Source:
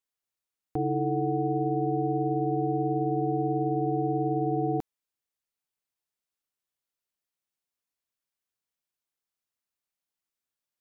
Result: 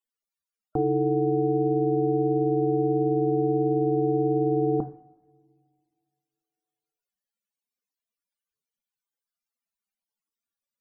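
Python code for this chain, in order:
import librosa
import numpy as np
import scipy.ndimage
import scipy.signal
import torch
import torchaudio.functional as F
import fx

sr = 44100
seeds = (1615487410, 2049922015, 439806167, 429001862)

y = fx.rev_double_slope(x, sr, seeds[0], early_s=0.49, late_s=2.3, knee_db=-22, drr_db=8.5)
y = fx.spec_topn(y, sr, count=64)
y = F.gain(torch.from_numpy(y), 4.0).numpy()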